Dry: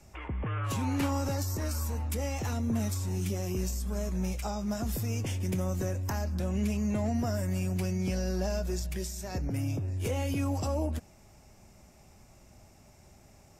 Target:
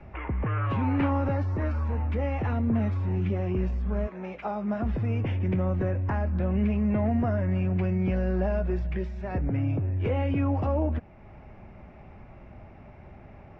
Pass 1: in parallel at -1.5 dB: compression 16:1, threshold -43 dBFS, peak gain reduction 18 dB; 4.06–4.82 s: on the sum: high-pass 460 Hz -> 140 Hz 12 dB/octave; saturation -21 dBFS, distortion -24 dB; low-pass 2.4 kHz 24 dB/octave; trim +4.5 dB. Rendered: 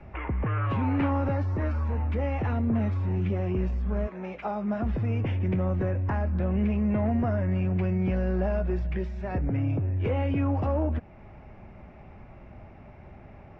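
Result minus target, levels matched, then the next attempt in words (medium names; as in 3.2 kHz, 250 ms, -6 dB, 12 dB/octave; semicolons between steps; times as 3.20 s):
saturation: distortion +11 dB; compression: peak gain reduction -6 dB
in parallel at -1.5 dB: compression 16:1, threshold -49.5 dBFS, peak gain reduction 24.5 dB; 4.06–4.82 s: on the sum: high-pass 460 Hz -> 140 Hz 12 dB/octave; saturation -15 dBFS, distortion -35 dB; low-pass 2.4 kHz 24 dB/octave; trim +4.5 dB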